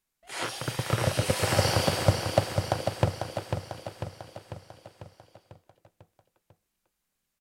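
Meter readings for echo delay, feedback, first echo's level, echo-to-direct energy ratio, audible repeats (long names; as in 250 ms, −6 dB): 496 ms, 57%, −6.5 dB, −5.0 dB, 6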